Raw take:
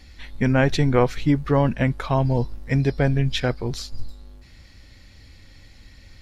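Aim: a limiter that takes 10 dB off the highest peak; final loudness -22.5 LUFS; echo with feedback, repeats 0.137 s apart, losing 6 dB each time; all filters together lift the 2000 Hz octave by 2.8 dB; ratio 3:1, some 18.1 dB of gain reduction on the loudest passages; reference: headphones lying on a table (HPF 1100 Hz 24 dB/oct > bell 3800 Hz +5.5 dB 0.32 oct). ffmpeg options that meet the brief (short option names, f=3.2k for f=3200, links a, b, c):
-af "equalizer=f=2k:t=o:g=3.5,acompressor=threshold=-39dB:ratio=3,alimiter=level_in=7.5dB:limit=-24dB:level=0:latency=1,volume=-7.5dB,highpass=f=1.1k:w=0.5412,highpass=f=1.1k:w=1.3066,equalizer=f=3.8k:t=o:w=0.32:g=5.5,aecho=1:1:137|274|411|548|685|822:0.501|0.251|0.125|0.0626|0.0313|0.0157,volume=25dB"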